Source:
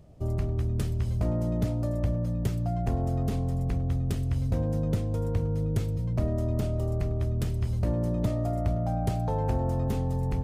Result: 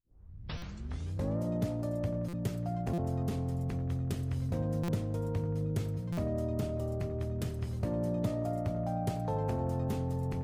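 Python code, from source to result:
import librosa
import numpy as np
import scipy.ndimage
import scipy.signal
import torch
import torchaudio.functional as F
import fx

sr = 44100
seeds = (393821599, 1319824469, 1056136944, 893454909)

y = fx.tape_start_head(x, sr, length_s=1.42)
y = scipy.signal.sosfilt(scipy.signal.butter(2, 89.0, 'highpass', fs=sr, output='sos'), y)
y = fx.hum_notches(y, sr, base_hz=60, count=2)
y = fx.echo_wet_bandpass(y, sr, ms=87, feedback_pct=65, hz=910.0, wet_db=-11.0)
y = fx.buffer_glitch(y, sr, at_s=(0.57, 2.28, 2.93, 4.83, 6.12), block=256, repeats=8)
y = F.gain(torch.from_numpy(y), -3.5).numpy()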